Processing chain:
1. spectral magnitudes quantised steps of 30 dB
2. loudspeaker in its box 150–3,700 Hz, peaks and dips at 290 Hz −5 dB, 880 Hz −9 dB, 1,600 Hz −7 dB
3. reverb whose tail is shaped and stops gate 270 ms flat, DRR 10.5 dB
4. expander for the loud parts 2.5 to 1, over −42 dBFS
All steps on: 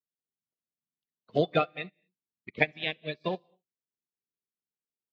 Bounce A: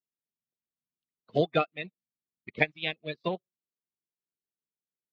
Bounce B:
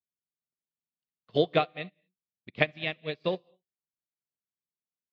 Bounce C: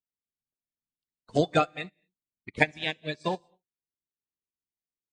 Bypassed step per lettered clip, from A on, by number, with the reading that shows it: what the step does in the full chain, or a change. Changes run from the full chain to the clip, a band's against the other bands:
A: 3, change in momentary loudness spread +2 LU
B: 1, change in momentary loudness spread +2 LU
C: 2, 500 Hz band −2.0 dB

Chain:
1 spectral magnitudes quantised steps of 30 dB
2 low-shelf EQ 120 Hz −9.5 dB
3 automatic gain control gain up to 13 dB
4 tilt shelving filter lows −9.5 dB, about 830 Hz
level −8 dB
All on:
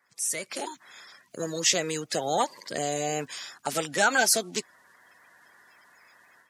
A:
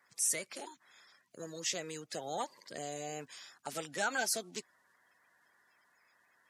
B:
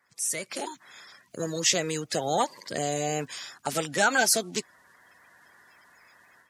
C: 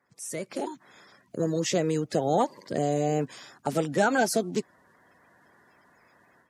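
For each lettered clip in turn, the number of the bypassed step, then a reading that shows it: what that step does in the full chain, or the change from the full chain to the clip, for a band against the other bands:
3, change in momentary loudness spread +1 LU
2, 125 Hz band +3.5 dB
4, 125 Hz band +11.5 dB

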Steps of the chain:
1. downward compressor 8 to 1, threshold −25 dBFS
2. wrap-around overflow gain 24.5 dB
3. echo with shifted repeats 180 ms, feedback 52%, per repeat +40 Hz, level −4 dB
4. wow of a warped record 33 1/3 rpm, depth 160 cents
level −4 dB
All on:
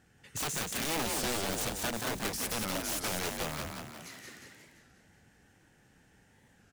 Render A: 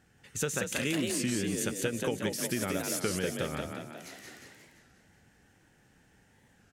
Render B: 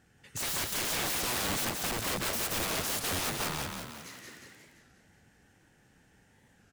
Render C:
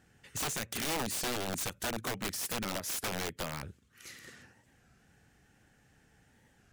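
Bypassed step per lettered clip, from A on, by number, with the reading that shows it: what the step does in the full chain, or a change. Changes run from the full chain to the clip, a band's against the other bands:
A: 2, change in crest factor +3.0 dB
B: 1, average gain reduction 6.0 dB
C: 3, change in crest factor −3.0 dB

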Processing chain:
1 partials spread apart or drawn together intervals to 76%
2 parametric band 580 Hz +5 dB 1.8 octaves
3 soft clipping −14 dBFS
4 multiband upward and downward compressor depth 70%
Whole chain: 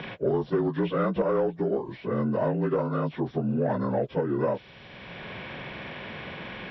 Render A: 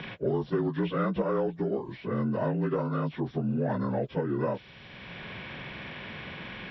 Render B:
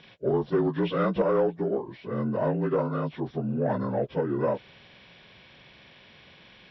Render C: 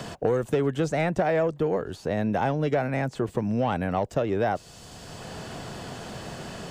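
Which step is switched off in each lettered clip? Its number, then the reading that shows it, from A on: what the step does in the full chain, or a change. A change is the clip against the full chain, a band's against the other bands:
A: 2, 500 Hz band −2.5 dB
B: 4, change in momentary loudness spread −5 LU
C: 1, 250 Hz band −3.0 dB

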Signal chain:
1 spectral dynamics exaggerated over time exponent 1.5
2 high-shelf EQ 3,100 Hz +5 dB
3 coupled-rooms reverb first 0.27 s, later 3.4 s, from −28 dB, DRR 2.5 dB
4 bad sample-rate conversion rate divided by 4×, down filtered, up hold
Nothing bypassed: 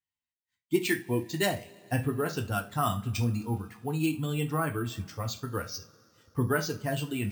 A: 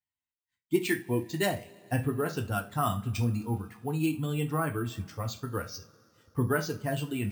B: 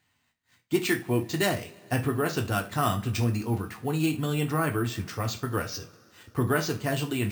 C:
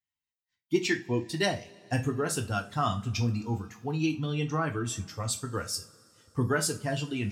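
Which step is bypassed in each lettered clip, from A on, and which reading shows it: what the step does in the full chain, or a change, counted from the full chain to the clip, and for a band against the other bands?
2, 4 kHz band −2.5 dB
1, change in integrated loudness +2.5 LU
4, 8 kHz band +5.0 dB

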